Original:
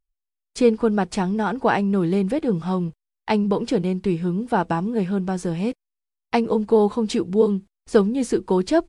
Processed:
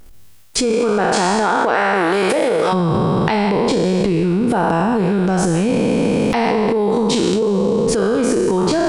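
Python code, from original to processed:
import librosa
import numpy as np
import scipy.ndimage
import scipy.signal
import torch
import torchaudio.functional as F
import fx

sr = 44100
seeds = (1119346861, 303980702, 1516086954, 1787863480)

y = fx.spec_trails(x, sr, decay_s=1.4)
y = fx.highpass(y, sr, hz=fx.line((0.72, 210.0), (2.72, 710.0)), slope=12, at=(0.72, 2.72), fade=0.02)
y = fx.transient(y, sr, attack_db=-11, sustain_db=8)
y = fx.env_flatten(y, sr, amount_pct=100)
y = y * librosa.db_to_amplitude(-4.0)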